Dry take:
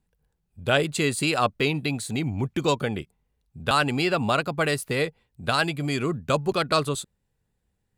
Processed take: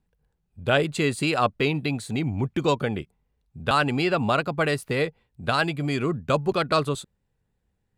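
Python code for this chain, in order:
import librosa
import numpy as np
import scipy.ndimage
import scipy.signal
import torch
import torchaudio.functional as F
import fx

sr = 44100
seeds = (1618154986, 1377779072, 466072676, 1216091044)

y = fx.high_shelf(x, sr, hz=4800.0, db=-9.0)
y = y * 10.0 ** (1.0 / 20.0)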